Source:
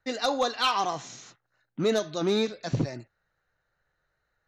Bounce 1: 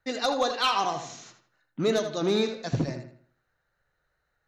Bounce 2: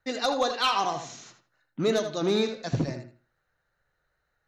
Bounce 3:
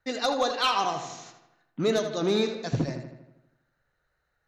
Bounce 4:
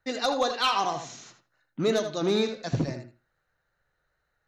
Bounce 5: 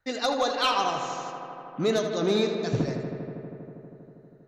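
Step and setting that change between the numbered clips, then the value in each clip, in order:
filtered feedback delay, feedback: 36%, 23%, 57%, 16%, 87%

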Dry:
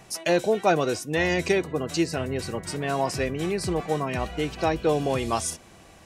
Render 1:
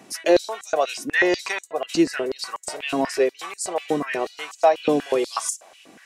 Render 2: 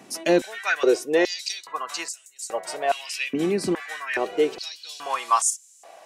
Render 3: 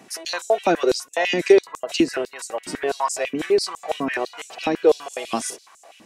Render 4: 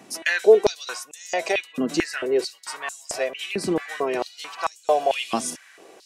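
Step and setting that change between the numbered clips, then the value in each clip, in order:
step-sequenced high-pass, rate: 8.2 Hz, 2.4 Hz, 12 Hz, 4.5 Hz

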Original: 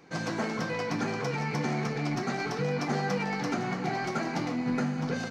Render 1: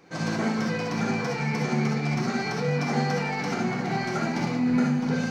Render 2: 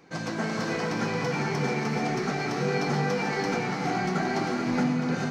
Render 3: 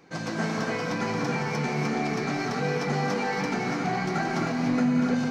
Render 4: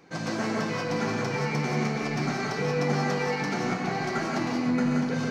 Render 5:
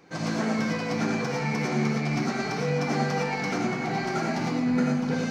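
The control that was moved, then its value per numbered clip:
gated-style reverb, gate: 90 ms, 470 ms, 320 ms, 210 ms, 130 ms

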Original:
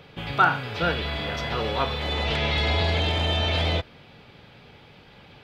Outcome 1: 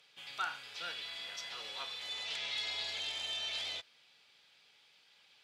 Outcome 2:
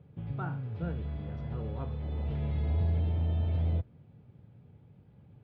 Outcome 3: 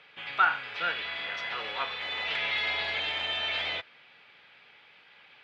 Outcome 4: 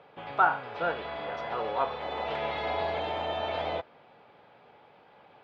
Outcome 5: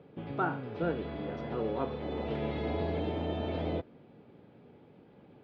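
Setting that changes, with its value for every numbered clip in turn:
band-pass filter, frequency: 7.7 kHz, 110 Hz, 2.1 kHz, 790 Hz, 300 Hz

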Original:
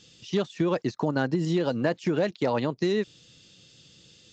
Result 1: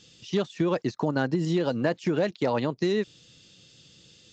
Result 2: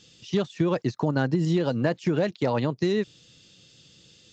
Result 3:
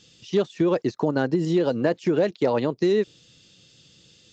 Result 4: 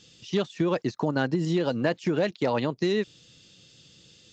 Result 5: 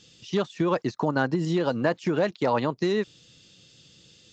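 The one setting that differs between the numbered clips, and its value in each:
dynamic bell, frequency: 9.7 kHz, 120 Hz, 420 Hz, 2.9 kHz, 1.1 kHz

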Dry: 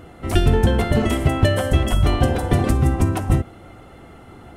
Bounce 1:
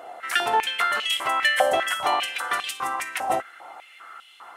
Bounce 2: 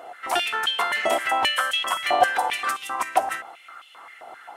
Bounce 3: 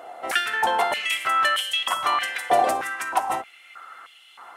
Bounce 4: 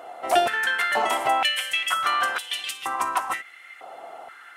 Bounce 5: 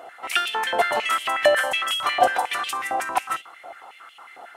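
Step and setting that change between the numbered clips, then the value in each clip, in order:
step-sequenced high-pass, rate: 5 Hz, 7.6 Hz, 3.2 Hz, 2.1 Hz, 11 Hz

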